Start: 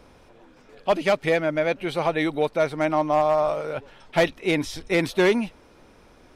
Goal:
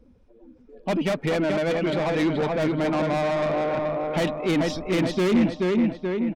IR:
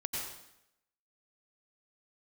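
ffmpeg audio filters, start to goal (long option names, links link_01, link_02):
-filter_complex "[0:a]afftdn=noise_reduction=22:noise_floor=-41,asplit=2[link_01][link_02];[link_02]asoftclip=type=hard:threshold=-21dB,volume=-10dB[link_03];[link_01][link_03]amix=inputs=2:normalize=0,lowpass=9600,asplit=2[link_04][link_05];[link_05]adelay=429,lowpass=frequency=3300:poles=1,volume=-5dB,asplit=2[link_06][link_07];[link_07]adelay=429,lowpass=frequency=3300:poles=1,volume=0.5,asplit=2[link_08][link_09];[link_09]adelay=429,lowpass=frequency=3300:poles=1,volume=0.5,asplit=2[link_10][link_11];[link_11]adelay=429,lowpass=frequency=3300:poles=1,volume=0.5,asplit=2[link_12][link_13];[link_13]adelay=429,lowpass=frequency=3300:poles=1,volume=0.5,asplit=2[link_14][link_15];[link_15]adelay=429,lowpass=frequency=3300:poles=1,volume=0.5[link_16];[link_06][link_08][link_10][link_12][link_14][link_16]amix=inputs=6:normalize=0[link_17];[link_04][link_17]amix=inputs=2:normalize=0,asoftclip=type=tanh:threshold=-22.5dB,equalizer=frequency=220:width_type=o:width=1:gain=10"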